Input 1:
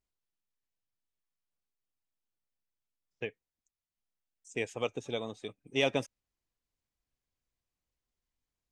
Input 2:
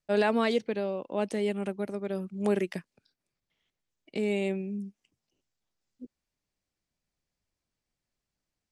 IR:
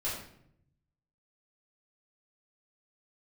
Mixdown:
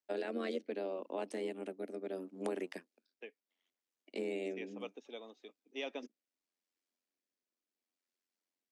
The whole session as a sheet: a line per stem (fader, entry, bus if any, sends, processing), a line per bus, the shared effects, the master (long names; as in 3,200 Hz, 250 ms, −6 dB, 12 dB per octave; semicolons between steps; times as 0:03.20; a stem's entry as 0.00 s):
−12.0 dB, 0.00 s, no send, Butterworth low-pass 5,900 Hz
−1.0 dB, 0.00 s, no send, sub-octave generator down 1 octave, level −4 dB; rotating-speaker cabinet horn 0.7 Hz; amplitude modulation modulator 89 Hz, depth 70%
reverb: not used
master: Butterworth high-pass 230 Hz 48 dB per octave; downward compressor, threshold −34 dBFS, peak gain reduction 7.5 dB